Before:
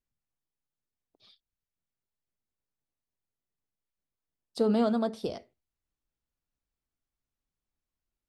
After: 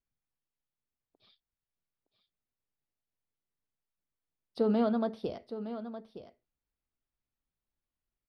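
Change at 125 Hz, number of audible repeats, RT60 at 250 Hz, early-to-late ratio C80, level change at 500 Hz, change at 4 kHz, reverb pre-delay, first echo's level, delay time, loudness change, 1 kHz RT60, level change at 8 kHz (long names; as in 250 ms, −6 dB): −1.5 dB, 1, no reverb audible, no reverb audible, −2.0 dB, −6.0 dB, no reverb audible, −11.5 dB, 915 ms, −4.0 dB, no reverb audible, can't be measured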